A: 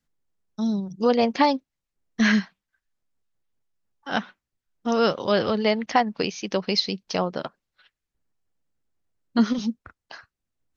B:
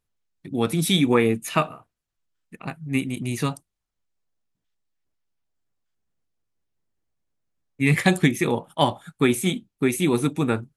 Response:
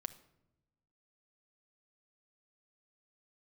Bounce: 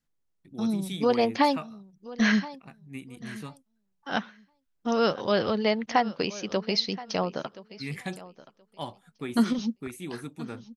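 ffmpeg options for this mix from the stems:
-filter_complex "[0:a]volume=-3dB,asplit=2[link_01][link_02];[link_02]volume=-18dB[link_03];[1:a]volume=-16.5dB,asplit=3[link_04][link_05][link_06];[link_04]atrim=end=8.21,asetpts=PTS-STARTPTS,afade=type=out:start_time=8.206:duration=0.004:curve=hsin[link_07];[link_05]atrim=start=8.21:end=8.72,asetpts=PTS-STARTPTS,volume=0[link_08];[link_06]atrim=start=8.72,asetpts=PTS-STARTPTS,afade=type=in:duration=0.004:curve=hsin[link_09];[link_07][link_08][link_09]concat=n=3:v=0:a=1[link_10];[link_03]aecho=0:1:1025|2050|3075:1|0.16|0.0256[link_11];[link_01][link_10][link_11]amix=inputs=3:normalize=0"

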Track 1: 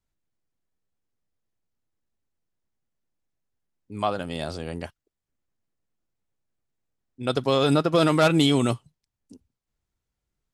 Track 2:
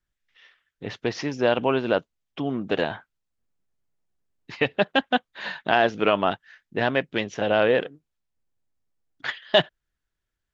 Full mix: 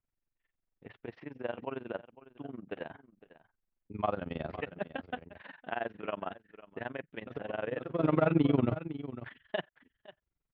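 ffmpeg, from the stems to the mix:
ffmpeg -i stem1.wav -i stem2.wav -filter_complex "[0:a]deesser=1,volume=-2dB,asplit=2[link_01][link_02];[link_02]volume=-13.5dB[link_03];[1:a]agate=range=-33dB:threshold=-43dB:ratio=3:detection=peak,volume=-12.5dB,asplit=3[link_04][link_05][link_06];[link_05]volume=-17.5dB[link_07];[link_06]apad=whole_len=464679[link_08];[link_01][link_08]sidechaincompress=threshold=-55dB:ratio=4:attack=6.2:release=154[link_09];[link_03][link_07]amix=inputs=2:normalize=0,aecho=0:1:513:1[link_10];[link_09][link_04][link_10]amix=inputs=3:normalize=0,lowpass=frequency=2700:width=0.5412,lowpass=frequency=2700:width=1.3066,tremolo=f=22:d=0.919" out.wav

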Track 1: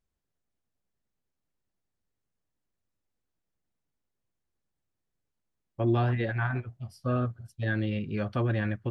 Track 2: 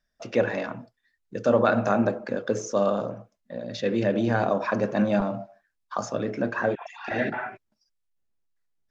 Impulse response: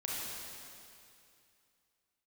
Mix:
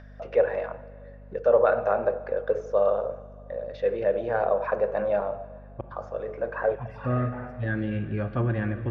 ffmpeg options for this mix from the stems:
-filter_complex "[0:a]volume=-0.5dB,asplit=3[link_01][link_02][link_03];[link_01]atrim=end=5.81,asetpts=PTS-STARTPTS,afade=type=out:start_time=5.806:duration=0.004:curve=hsin[link_04];[link_02]atrim=start=5.81:end=6.71,asetpts=PTS-STARTPTS,volume=0[link_05];[link_03]atrim=start=6.71,asetpts=PTS-STARTPTS,afade=type=in:duration=0.004:curve=hsin[link_06];[link_04][link_05][link_06]concat=n=3:v=0:a=1,asplit=3[link_07][link_08][link_09];[link_08]volume=-9.5dB[link_10];[1:a]lowshelf=frequency=360:width_type=q:width=3:gain=-9.5,acompressor=mode=upward:threshold=-29dB:ratio=2.5,volume=-4dB,asplit=2[link_11][link_12];[link_12]volume=-19dB[link_13];[link_09]apad=whole_len=392886[link_14];[link_11][link_14]sidechaincompress=threshold=-36dB:ratio=8:attack=11:release=1330[link_15];[2:a]atrim=start_sample=2205[link_16];[link_10][link_13]amix=inputs=2:normalize=0[link_17];[link_17][link_16]afir=irnorm=-1:irlink=0[link_18];[link_07][link_15][link_18]amix=inputs=3:normalize=0,lowpass=2000,aeval=exprs='val(0)+0.00562*(sin(2*PI*50*n/s)+sin(2*PI*2*50*n/s)/2+sin(2*PI*3*50*n/s)/3+sin(2*PI*4*50*n/s)/4+sin(2*PI*5*50*n/s)/5)':channel_layout=same"

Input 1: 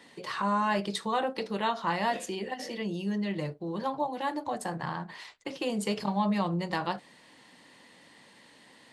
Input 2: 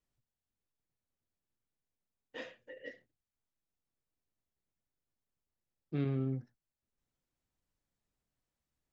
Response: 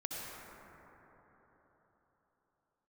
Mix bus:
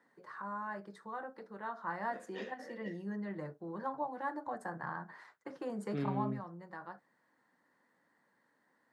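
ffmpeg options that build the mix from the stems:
-filter_complex "[0:a]highshelf=frequency=2100:width_type=q:width=3:gain=-10,volume=-8.5dB,afade=type=in:start_time=1.58:duration=0.76:silence=0.421697,afade=type=out:start_time=6.15:duration=0.23:silence=0.334965[link_01];[1:a]volume=-2dB[link_02];[link_01][link_02]amix=inputs=2:normalize=0,highpass=140"

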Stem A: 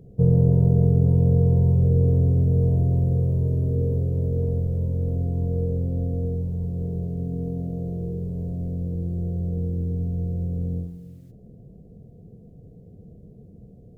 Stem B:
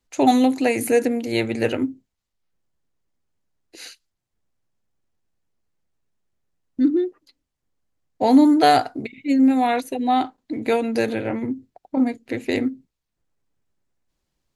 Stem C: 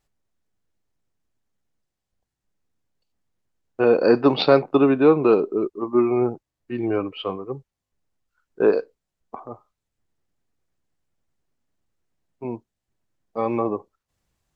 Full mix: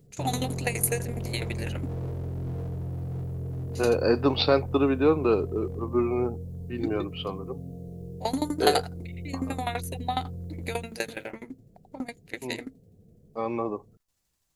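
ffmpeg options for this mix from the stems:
ffmpeg -i stem1.wav -i stem2.wav -i stem3.wav -filter_complex "[0:a]bandreject=frequency=60:width_type=h:width=6,bandreject=frequency=120:width_type=h:width=6,bandreject=frequency=180:width_type=h:width=6,flanger=delay=6.8:depth=2.7:regen=82:speed=0.89:shape=sinusoidal,asoftclip=type=hard:threshold=-24.5dB,volume=-5.5dB[link_01];[1:a]equalizer=frequency=120:width=0.4:gain=-15,aeval=exprs='val(0)*pow(10,-21*if(lt(mod(12*n/s,1),2*abs(12)/1000),1-mod(12*n/s,1)/(2*abs(12)/1000),(mod(12*n/s,1)-2*abs(12)/1000)/(1-2*abs(12)/1000))/20)':channel_layout=same,volume=-1.5dB[link_02];[2:a]volume=-6.5dB[link_03];[link_01][link_02][link_03]amix=inputs=3:normalize=0,highshelf=frequency=4300:gain=12" out.wav

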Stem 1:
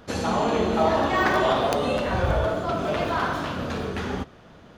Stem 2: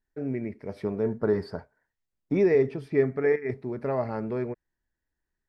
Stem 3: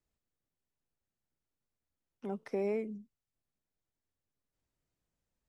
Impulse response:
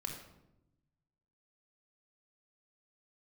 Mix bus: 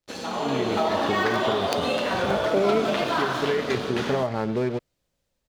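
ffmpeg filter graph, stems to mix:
-filter_complex "[0:a]highpass=200,volume=-6dB[link_01];[1:a]acompressor=threshold=-24dB:ratio=6,adelay=250,volume=-1dB[link_02];[2:a]equalizer=frequency=550:width_type=o:width=0.31:gain=8.5,volume=0dB,asplit=2[link_03][link_04];[link_04]apad=whole_len=253028[link_05];[link_02][link_05]sidechaincompress=threshold=-42dB:ratio=8:attack=16:release=853[link_06];[link_01][link_06]amix=inputs=2:normalize=0,aeval=exprs='sgn(val(0))*max(abs(val(0))-0.00422,0)':channel_layout=same,acompressor=threshold=-29dB:ratio=6,volume=0dB[link_07];[link_03][link_07]amix=inputs=2:normalize=0,equalizer=frequency=3900:width=1:gain=5.5,dynaudnorm=framelen=170:gausssize=5:maxgain=9dB"

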